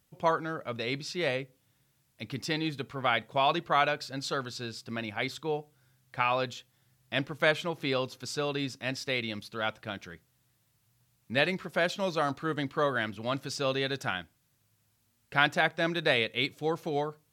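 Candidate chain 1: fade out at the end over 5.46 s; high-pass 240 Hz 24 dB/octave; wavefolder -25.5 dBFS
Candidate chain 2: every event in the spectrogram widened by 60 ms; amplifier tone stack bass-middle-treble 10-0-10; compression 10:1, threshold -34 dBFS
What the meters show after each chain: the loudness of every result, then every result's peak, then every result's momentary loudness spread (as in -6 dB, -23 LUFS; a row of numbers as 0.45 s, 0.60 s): -35.0 LUFS, -39.0 LUFS; -25.5 dBFS, -19.5 dBFS; 11 LU, 7 LU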